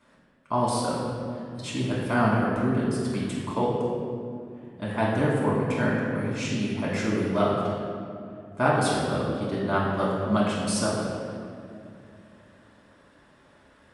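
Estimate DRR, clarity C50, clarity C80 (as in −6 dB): −6.0 dB, −0.5 dB, 1.0 dB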